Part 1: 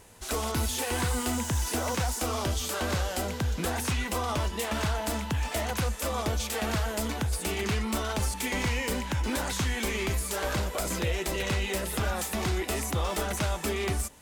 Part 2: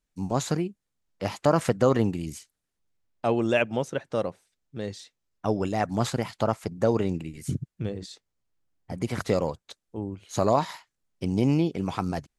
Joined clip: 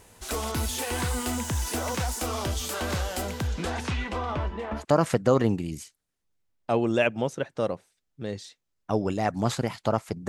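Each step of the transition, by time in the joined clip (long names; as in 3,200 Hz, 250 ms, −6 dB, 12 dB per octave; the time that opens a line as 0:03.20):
part 1
0:03.47–0:04.85: low-pass filter 8,400 Hz → 1,100 Hz
0:04.80: continue with part 2 from 0:01.35, crossfade 0.10 s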